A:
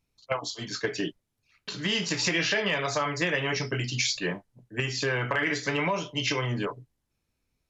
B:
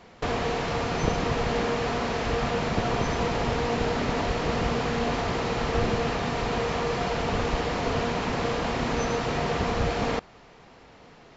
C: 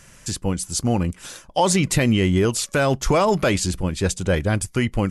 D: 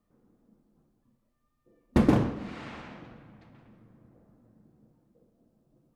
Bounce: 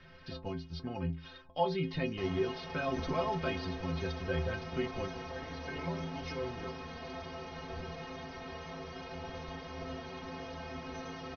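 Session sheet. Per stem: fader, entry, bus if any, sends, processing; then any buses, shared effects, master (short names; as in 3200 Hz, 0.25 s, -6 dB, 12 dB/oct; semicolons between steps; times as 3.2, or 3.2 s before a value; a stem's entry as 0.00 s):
+1.5 dB, 0.00 s, no send, bell 3600 Hz -10 dB 2.9 oct; auto duck -14 dB, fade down 0.25 s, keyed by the third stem
-5.0 dB, 1.95 s, no send, dry
-4.0 dB, 0.00 s, no send, steep low-pass 4500 Hz 48 dB/oct; three-band squash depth 40%
-5.5 dB, 1.00 s, no send, dry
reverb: off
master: brick-wall FIR low-pass 6200 Hz; metallic resonator 78 Hz, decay 0.48 s, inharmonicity 0.03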